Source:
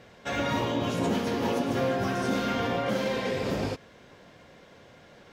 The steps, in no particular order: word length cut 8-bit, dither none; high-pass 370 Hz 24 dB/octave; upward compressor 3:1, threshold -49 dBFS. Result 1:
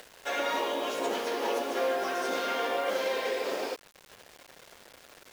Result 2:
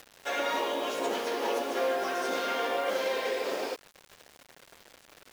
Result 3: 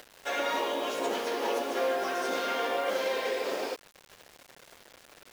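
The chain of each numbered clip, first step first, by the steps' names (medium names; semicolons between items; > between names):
high-pass > upward compressor > word length cut; high-pass > word length cut > upward compressor; upward compressor > high-pass > word length cut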